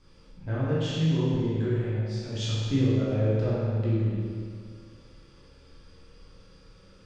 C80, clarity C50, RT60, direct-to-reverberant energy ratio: −1.0 dB, −3.5 dB, 2.0 s, −9.0 dB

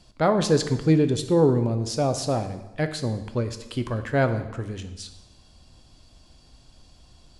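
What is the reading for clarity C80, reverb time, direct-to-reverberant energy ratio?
13.0 dB, 1.0 s, 8.5 dB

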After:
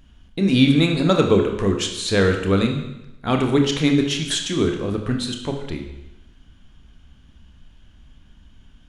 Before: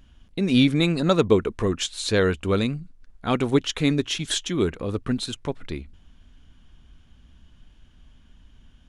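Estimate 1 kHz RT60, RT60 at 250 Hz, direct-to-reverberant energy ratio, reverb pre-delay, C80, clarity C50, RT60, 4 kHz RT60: 0.95 s, 0.95 s, 3.0 dB, 28 ms, 9.0 dB, 6.5 dB, 0.95 s, 0.90 s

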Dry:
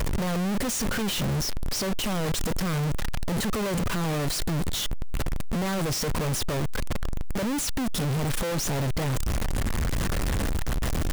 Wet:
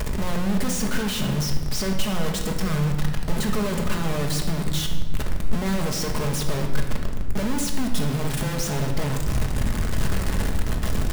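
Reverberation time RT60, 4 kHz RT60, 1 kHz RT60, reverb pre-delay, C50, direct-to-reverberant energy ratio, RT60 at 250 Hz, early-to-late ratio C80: 1.5 s, 1.0 s, 1.3 s, 5 ms, 5.5 dB, 2.0 dB, 2.4 s, 8.0 dB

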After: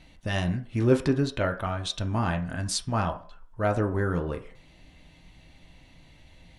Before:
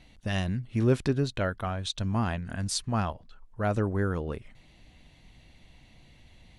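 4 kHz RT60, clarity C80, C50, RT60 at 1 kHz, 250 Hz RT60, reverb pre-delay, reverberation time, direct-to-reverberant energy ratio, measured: 0.45 s, 17.5 dB, 13.0 dB, 0.50 s, 0.40 s, 3 ms, 0.50 s, 4.0 dB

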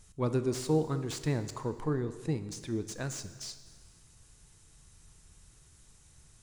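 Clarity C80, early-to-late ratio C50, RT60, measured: 13.0 dB, 12.0 dB, 1.6 s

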